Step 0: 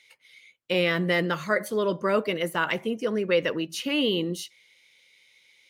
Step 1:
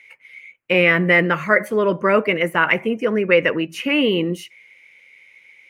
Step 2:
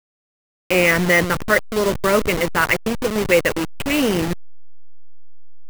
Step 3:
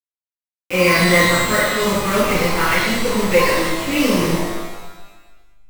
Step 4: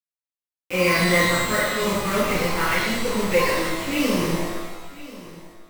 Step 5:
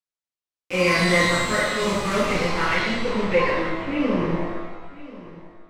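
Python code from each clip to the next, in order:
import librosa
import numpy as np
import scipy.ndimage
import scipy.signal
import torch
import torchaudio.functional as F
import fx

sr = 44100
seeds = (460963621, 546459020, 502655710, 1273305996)

y1 = fx.high_shelf_res(x, sr, hz=3000.0, db=-8.0, q=3.0)
y1 = y1 * librosa.db_to_amplitude(7.0)
y2 = fx.delta_hold(y1, sr, step_db=-17.0)
y3 = fx.rev_shimmer(y2, sr, seeds[0], rt60_s=1.2, semitones=12, shimmer_db=-8, drr_db=-10.5)
y3 = y3 * librosa.db_to_amplitude(-10.0)
y4 = y3 + 10.0 ** (-18.0 / 20.0) * np.pad(y3, (int(1038 * sr / 1000.0), 0))[:len(y3)]
y4 = y4 * librosa.db_to_amplitude(-5.0)
y5 = fx.filter_sweep_lowpass(y4, sr, from_hz=7700.0, to_hz=1800.0, start_s=2.13, end_s=4.0, q=0.77)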